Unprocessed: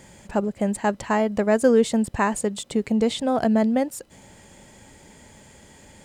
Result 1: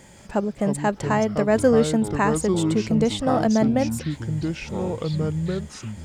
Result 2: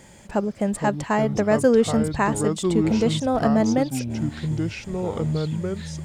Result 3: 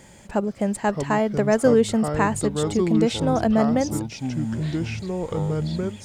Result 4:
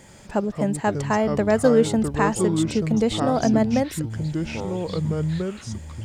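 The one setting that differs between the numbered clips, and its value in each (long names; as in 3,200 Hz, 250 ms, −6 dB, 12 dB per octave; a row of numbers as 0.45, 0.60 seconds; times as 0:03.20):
delay with pitch and tempo change per echo, delay time: 166, 319, 470, 81 milliseconds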